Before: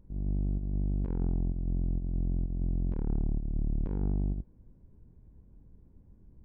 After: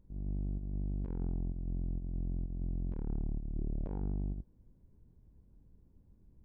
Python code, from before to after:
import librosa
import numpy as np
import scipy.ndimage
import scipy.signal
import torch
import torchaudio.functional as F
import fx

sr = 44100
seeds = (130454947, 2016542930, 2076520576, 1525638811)

y = fx.peak_eq(x, sr, hz=fx.line((3.56, 330.0), (3.99, 820.0)), db=9.5, octaves=0.74, at=(3.56, 3.99), fade=0.02)
y = y * 10.0 ** (-6.0 / 20.0)